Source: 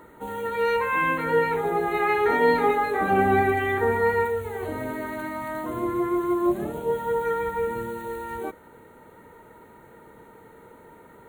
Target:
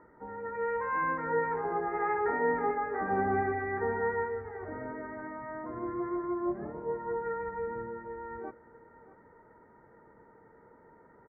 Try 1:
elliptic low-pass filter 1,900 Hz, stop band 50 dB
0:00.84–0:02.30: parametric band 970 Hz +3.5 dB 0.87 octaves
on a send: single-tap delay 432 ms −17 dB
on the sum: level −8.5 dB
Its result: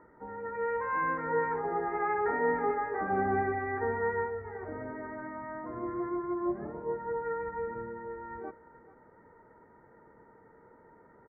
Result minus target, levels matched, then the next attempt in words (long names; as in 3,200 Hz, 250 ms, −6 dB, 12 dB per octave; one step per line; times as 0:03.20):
echo 203 ms early
elliptic low-pass filter 1,900 Hz, stop band 50 dB
0:00.84–0:02.30: parametric band 970 Hz +3.5 dB 0.87 octaves
on a send: single-tap delay 635 ms −17 dB
on the sum: level −8.5 dB